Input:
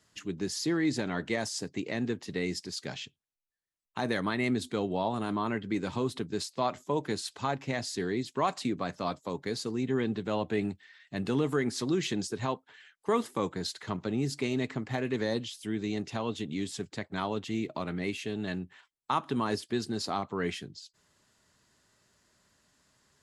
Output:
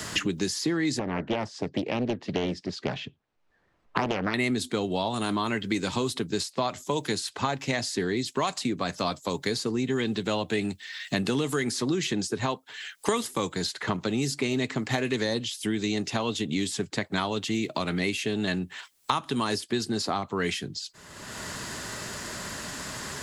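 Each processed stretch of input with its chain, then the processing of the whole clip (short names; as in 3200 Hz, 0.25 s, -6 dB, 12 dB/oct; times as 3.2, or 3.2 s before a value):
0.99–4.34 LPF 1100 Hz + Doppler distortion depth 0.65 ms
whole clip: high shelf 3000 Hz +8.5 dB; three-band squash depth 100%; gain +2.5 dB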